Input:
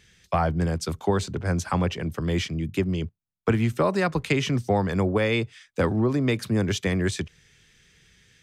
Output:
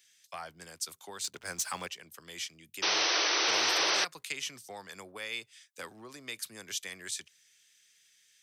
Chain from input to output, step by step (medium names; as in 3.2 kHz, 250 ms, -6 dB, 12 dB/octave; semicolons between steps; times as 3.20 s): differentiator; 1.24–1.88 s: waveshaping leveller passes 2; 2.82–4.05 s: painted sound noise 300–6200 Hz -28 dBFS